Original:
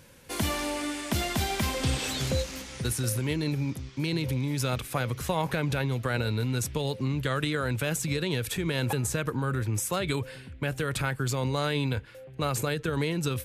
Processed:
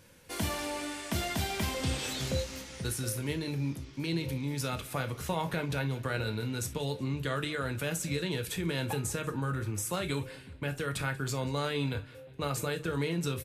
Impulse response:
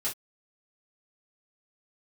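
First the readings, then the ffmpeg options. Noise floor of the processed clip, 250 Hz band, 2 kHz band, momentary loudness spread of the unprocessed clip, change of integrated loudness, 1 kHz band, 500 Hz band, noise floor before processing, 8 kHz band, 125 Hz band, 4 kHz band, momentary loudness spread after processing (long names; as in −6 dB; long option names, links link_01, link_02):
−49 dBFS, −4.0 dB, −4.0 dB, 4 LU, −4.5 dB, −4.0 dB, −4.0 dB, −47 dBFS, −4.0 dB, −5.0 dB, −4.0 dB, 4 LU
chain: -filter_complex "[0:a]aecho=1:1:186|372|558:0.0841|0.0379|0.017,asplit=2[link_01][link_02];[1:a]atrim=start_sample=2205[link_03];[link_02][link_03]afir=irnorm=-1:irlink=0,volume=-7.5dB[link_04];[link_01][link_04]amix=inputs=2:normalize=0,volume=-7dB"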